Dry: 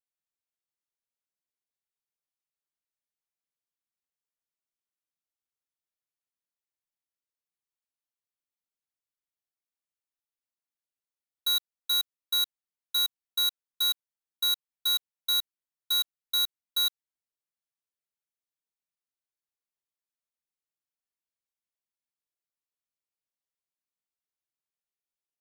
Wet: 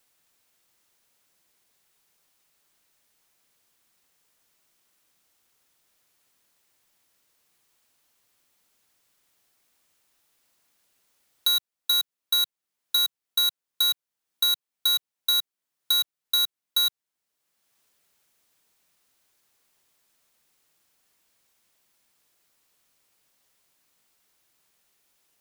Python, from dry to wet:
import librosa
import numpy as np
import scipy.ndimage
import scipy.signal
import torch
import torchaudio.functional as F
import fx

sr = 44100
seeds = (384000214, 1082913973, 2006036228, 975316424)

y = fx.band_squash(x, sr, depth_pct=70)
y = y * librosa.db_to_amplitude(3.5)